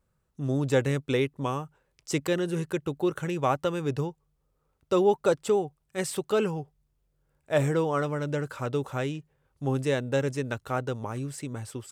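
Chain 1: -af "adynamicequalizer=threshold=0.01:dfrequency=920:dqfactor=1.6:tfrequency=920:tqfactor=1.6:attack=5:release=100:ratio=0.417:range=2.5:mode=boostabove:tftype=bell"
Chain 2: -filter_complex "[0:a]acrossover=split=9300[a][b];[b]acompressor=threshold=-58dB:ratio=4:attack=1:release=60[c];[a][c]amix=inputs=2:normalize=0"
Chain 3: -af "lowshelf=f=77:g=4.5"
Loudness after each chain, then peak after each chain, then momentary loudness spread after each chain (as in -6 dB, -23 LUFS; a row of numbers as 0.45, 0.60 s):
-28.0, -29.0, -28.5 LUFS; -9.0, -11.5, -11.0 dBFS; 11, 11, 10 LU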